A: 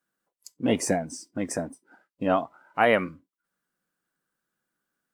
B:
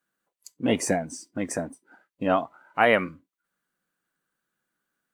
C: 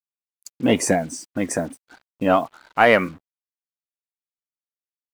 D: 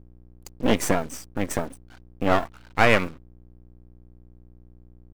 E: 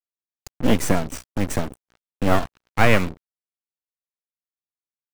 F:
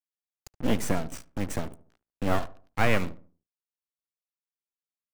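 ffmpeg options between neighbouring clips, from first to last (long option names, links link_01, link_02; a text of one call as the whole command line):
ffmpeg -i in.wav -af "equalizer=frequency=2200:width=0.65:gain=2.5,bandreject=frequency=5200:width=14" out.wav
ffmpeg -i in.wav -filter_complex "[0:a]asplit=2[link_01][link_02];[link_02]volume=14.5dB,asoftclip=hard,volume=-14.5dB,volume=-7.5dB[link_03];[link_01][link_03]amix=inputs=2:normalize=0,acrusher=bits=7:mix=0:aa=0.5,volume=2.5dB" out.wav
ffmpeg -i in.wav -af "aeval=exprs='val(0)+0.00562*(sin(2*PI*60*n/s)+sin(2*PI*2*60*n/s)/2+sin(2*PI*3*60*n/s)/3+sin(2*PI*4*60*n/s)/4+sin(2*PI*5*60*n/s)/5)':channel_layout=same,aeval=exprs='max(val(0),0)':channel_layout=same" out.wav
ffmpeg -i in.wav -filter_complex "[0:a]acrossover=split=220|4200[link_01][link_02][link_03];[link_01]acontrast=77[link_04];[link_04][link_02][link_03]amix=inputs=3:normalize=0,acrusher=bits=4:mix=0:aa=0.5" out.wav
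ffmpeg -i in.wav -filter_complex "[0:a]asplit=2[link_01][link_02];[link_02]adelay=73,lowpass=frequency=1200:poles=1,volume=-16dB,asplit=2[link_03][link_04];[link_04]adelay=73,lowpass=frequency=1200:poles=1,volume=0.4,asplit=2[link_05][link_06];[link_06]adelay=73,lowpass=frequency=1200:poles=1,volume=0.4,asplit=2[link_07][link_08];[link_08]adelay=73,lowpass=frequency=1200:poles=1,volume=0.4[link_09];[link_01][link_03][link_05][link_07][link_09]amix=inputs=5:normalize=0,volume=-7.5dB" out.wav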